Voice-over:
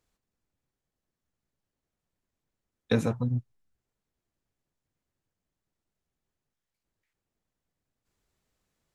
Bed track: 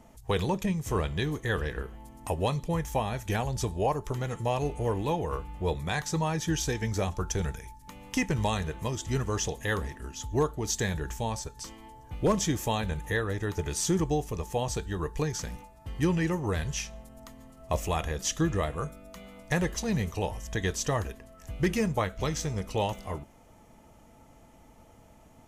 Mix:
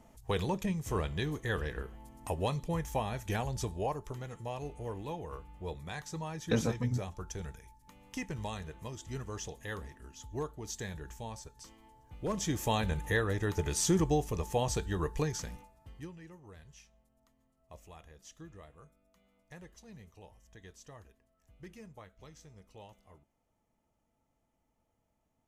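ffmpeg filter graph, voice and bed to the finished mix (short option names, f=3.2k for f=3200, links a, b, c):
-filter_complex "[0:a]adelay=3600,volume=-4.5dB[a];[1:a]volume=5.5dB,afade=t=out:st=3.48:d=0.82:silence=0.473151,afade=t=in:st=12.26:d=0.5:silence=0.316228,afade=t=out:st=15.03:d=1.08:silence=0.0749894[b];[a][b]amix=inputs=2:normalize=0"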